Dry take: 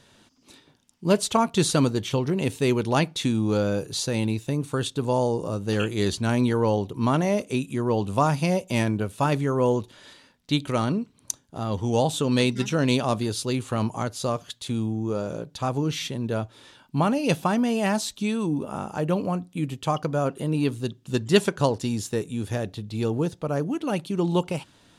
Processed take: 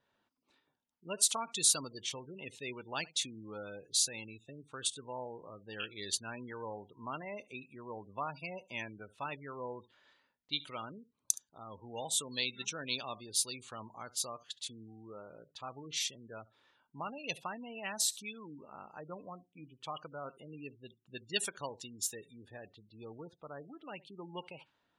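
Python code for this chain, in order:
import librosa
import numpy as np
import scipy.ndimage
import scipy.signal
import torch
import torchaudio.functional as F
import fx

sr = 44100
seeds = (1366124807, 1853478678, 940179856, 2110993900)

y = x + 10.0 ** (-20.0 / 20.0) * np.pad(x, (int(71 * sr / 1000.0), 0))[:len(x)]
y = fx.spec_gate(y, sr, threshold_db=-25, keep='strong')
y = scipy.signal.lfilter([1.0, -0.97], [1.0], y)
y = fx.env_lowpass(y, sr, base_hz=970.0, full_db=-34.0)
y = F.gain(torch.from_numpy(y), 2.0).numpy()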